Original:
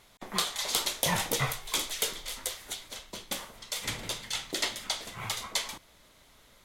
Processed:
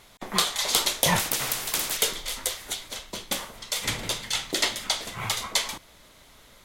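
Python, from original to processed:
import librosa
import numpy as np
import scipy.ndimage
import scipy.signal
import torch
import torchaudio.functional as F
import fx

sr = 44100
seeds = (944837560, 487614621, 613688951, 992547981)

y = fx.spectral_comp(x, sr, ratio=4.0, at=(1.19, 1.97))
y = y * 10.0 ** (6.0 / 20.0)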